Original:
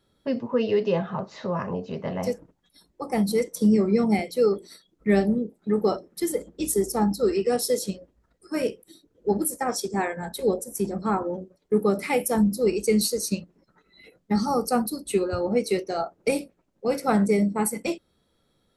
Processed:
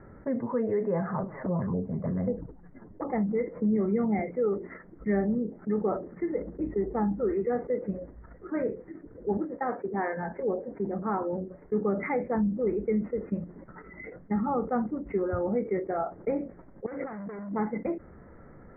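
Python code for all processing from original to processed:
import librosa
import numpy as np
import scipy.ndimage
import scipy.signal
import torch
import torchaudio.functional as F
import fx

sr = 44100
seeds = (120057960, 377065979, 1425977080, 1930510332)

y = fx.chain(x, sr, fx.lowpass(hz=1100.0, slope=6),
    fx.low_shelf(hz=500.0, db=5.5),
    fx.env_flanger(rest_ms=10.8, full_db=-20.5), at=(1.23, 3.05))
y = fx.chain(y, sr, fx.highpass(hz=510.0, slope=6),
    fx.tilt_eq(slope=-2.0), at=(9.37, 11.33))
y = fx.chain(y, sr, fx.clip_hard(threshold_db=-27.5),
    fx.highpass(hz=130.0, slope=6),
    fx.over_compress(threshold_db=-38.0, ratio=-0.5), at=(16.86, 17.56))
y = scipy.signal.sosfilt(scipy.signal.butter(16, 2100.0, 'lowpass', fs=sr, output='sos'), y)
y = fx.low_shelf(y, sr, hz=140.0, db=3.5)
y = fx.env_flatten(y, sr, amount_pct=50)
y = F.gain(torch.from_numpy(y), -8.5).numpy()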